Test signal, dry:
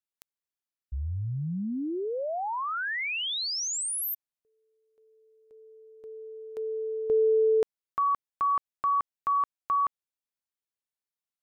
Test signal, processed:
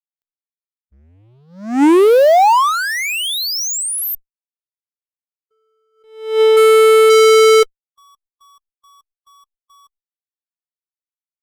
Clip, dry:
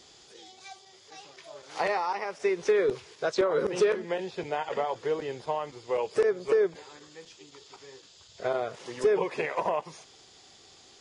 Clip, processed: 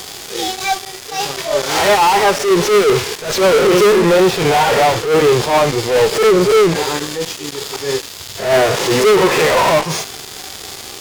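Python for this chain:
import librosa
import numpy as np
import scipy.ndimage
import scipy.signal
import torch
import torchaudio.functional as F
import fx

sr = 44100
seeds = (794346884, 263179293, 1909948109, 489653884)

y = fx.fuzz(x, sr, gain_db=46.0, gate_db=-53.0)
y = fx.hpss(y, sr, part='percussive', gain_db=-12)
y = fx.attack_slew(y, sr, db_per_s=110.0)
y = y * librosa.db_to_amplitude(5.5)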